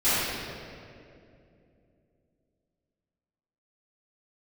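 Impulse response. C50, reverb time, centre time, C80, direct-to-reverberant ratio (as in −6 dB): −5.5 dB, 2.6 s, 166 ms, −2.5 dB, −18.5 dB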